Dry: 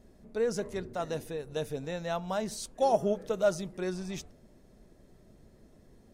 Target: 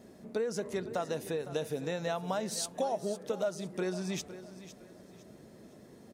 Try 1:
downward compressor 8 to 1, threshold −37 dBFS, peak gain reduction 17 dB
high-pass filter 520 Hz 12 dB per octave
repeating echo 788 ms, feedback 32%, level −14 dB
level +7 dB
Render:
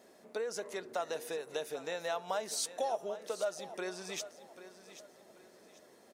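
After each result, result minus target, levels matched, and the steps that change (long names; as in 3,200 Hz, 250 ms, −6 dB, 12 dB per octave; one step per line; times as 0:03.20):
125 Hz band −14.5 dB; echo 280 ms late
change: high-pass filter 150 Hz 12 dB per octave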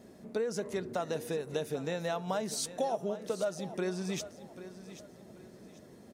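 echo 280 ms late
change: repeating echo 508 ms, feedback 32%, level −14 dB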